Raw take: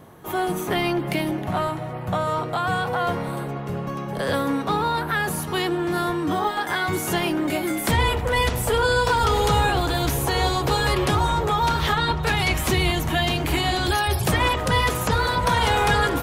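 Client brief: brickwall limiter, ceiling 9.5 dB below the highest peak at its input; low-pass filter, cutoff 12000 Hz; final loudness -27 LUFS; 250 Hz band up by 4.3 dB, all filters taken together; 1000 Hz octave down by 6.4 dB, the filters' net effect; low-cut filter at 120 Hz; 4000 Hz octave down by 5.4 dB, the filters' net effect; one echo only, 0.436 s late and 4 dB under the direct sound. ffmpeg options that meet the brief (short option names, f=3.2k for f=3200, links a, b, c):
-af "highpass=120,lowpass=12k,equalizer=f=250:t=o:g=7.5,equalizer=f=1k:t=o:g=-8.5,equalizer=f=4k:t=o:g=-6.5,alimiter=limit=-18dB:level=0:latency=1,aecho=1:1:436:0.631,volume=-1.5dB"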